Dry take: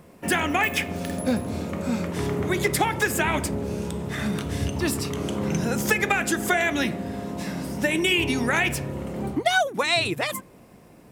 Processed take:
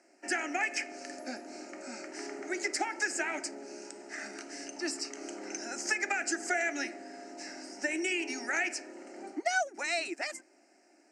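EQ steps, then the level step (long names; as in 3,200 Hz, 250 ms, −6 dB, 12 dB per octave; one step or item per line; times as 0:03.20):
elliptic band-pass filter 320–7,900 Hz, stop band 40 dB
parametric band 5,100 Hz +14 dB 0.97 octaves
phaser with its sweep stopped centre 710 Hz, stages 8
−8.0 dB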